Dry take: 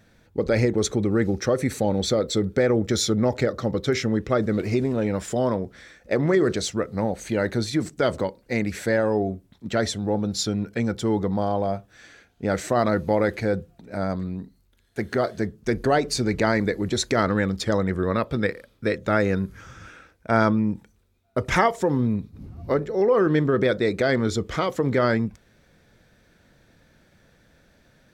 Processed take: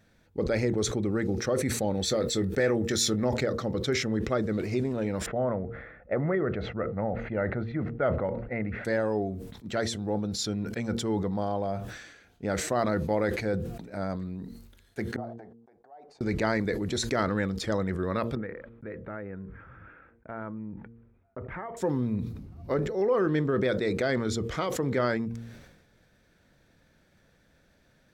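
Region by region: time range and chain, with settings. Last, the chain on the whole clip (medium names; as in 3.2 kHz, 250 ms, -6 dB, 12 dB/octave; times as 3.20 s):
1.95–3.24 s: treble shelf 5 kHz +7 dB + doubling 22 ms -13 dB + small resonant body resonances 1.8/2.6 kHz, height 10 dB, ringing for 25 ms
5.26–8.85 s: low-pass 2.1 kHz 24 dB/octave + comb 1.5 ms, depth 36% + tape noise reduction on one side only decoder only
15.16–16.21 s: gate -38 dBFS, range -29 dB + compression 12:1, threshold -33 dBFS + band-pass filter 770 Hz, Q 6.2
18.35–21.77 s: gate -55 dBFS, range -17 dB + low-pass 2 kHz 24 dB/octave + compression 2.5:1, threshold -34 dBFS
whole clip: de-hum 115.8 Hz, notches 4; decay stretcher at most 54 dB/s; trim -6 dB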